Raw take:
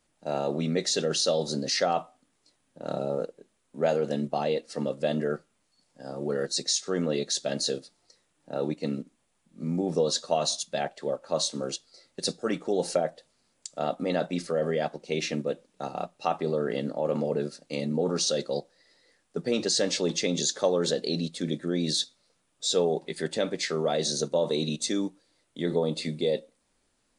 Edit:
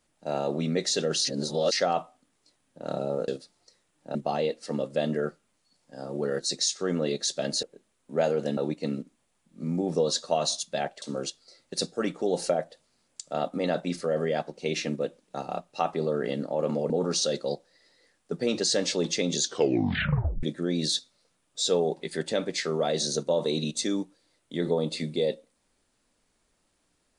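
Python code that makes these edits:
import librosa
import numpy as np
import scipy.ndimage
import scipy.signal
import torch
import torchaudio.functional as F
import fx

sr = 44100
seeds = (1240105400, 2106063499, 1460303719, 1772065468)

y = fx.edit(x, sr, fx.reverse_span(start_s=1.25, length_s=0.47),
    fx.swap(start_s=3.28, length_s=0.94, other_s=7.7, other_length_s=0.87),
    fx.cut(start_s=11.02, length_s=0.46),
    fx.cut(start_s=17.36, length_s=0.59),
    fx.tape_stop(start_s=20.47, length_s=1.01), tone=tone)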